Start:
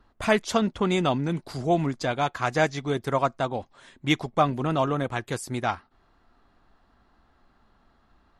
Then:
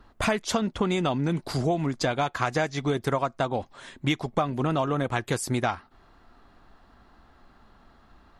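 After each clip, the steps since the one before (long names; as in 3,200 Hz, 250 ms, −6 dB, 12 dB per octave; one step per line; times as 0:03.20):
downward compressor 10 to 1, threshold −28 dBFS, peak gain reduction 13 dB
level +6.5 dB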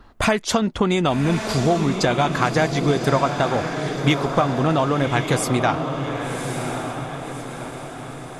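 feedback delay with all-pass diffusion 1,131 ms, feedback 51%, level −6 dB
level +6 dB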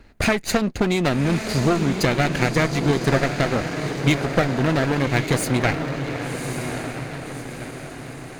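lower of the sound and its delayed copy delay 0.45 ms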